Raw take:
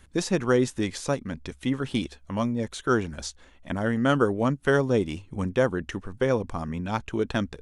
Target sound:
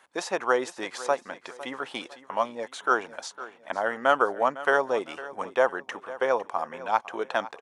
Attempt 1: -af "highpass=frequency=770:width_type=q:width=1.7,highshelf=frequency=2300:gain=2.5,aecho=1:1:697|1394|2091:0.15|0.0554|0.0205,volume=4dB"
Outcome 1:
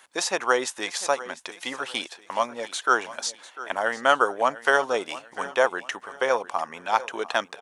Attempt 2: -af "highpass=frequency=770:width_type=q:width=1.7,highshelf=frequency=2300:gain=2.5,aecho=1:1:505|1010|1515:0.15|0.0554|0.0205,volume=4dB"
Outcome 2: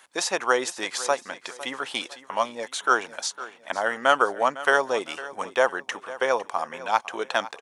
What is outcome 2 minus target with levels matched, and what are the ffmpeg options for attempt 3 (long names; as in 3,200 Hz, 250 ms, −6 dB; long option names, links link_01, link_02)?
4,000 Hz band +6.0 dB
-af "highpass=frequency=770:width_type=q:width=1.7,highshelf=frequency=2300:gain=-9,aecho=1:1:505|1010|1515:0.15|0.0554|0.0205,volume=4dB"